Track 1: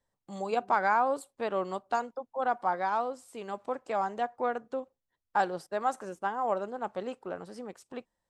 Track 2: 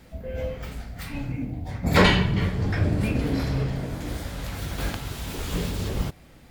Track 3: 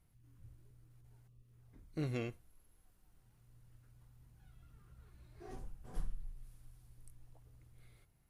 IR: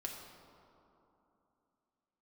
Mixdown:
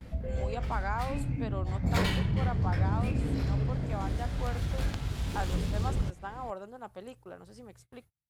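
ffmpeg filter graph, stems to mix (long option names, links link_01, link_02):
-filter_complex "[0:a]highshelf=frequency=2100:gain=7,volume=-10.5dB,asplit=2[link_01][link_02];[1:a]highshelf=frequency=8200:gain=12,adynamicsmooth=sensitivity=3.5:basefreq=3600,volume=-0.5dB[link_03];[2:a]highpass=69,volume=-1dB[link_04];[link_02]apad=whole_len=365837[link_05];[link_04][link_05]sidechaincompress=threshold=-43dB:ratio=8:attack=24:release=796[link_06];[link_03][link_06]amix=inputs=2:normalize=0,highshelf=frequency=5300:gain=6,acompressor=threshold=-40dB:ratio=2,volume=0dB[link_07];[link_01][link_07]amix=inputs=2:normalize=0,agate=range=-28dB:threshold=-57dB:ratio=16:detection=peak,equalizer=frequency=63:width=0.37:gain=8.5"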